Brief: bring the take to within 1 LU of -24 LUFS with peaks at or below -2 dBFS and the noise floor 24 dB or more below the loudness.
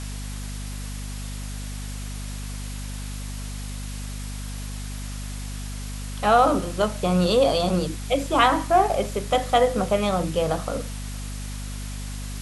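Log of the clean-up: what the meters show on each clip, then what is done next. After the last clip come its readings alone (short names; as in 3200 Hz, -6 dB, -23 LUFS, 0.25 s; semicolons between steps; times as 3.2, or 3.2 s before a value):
hum 50 Hz; harmonics up to 250 Hz; hum level -30 dBFS; noise floor -32 dBFS; noise floor target -50 dBFS; loudness -25.5 LUFS; peak -5.0 dBFS; loudness target -24.0 LUFS
-> de-hum 50 Hz, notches 5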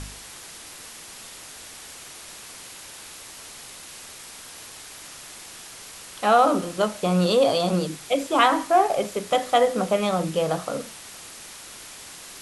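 hum none; noise floor -42 dBFS; noise floor target -46 dBFS
-> denoiser 6 dB, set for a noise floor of -42 dBFS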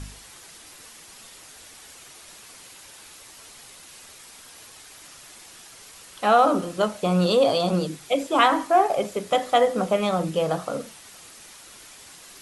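noise floor -47 dBFS; loudness -22.0 LUFS; peak -5.5 dBFS; loudness target -24.0 LUFS
-> gain -2 dB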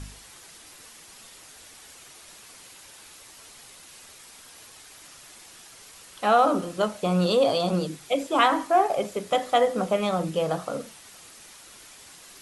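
loudness -24.0 LUFS; peak -7.5 dBFS; noise floor -49 dBFS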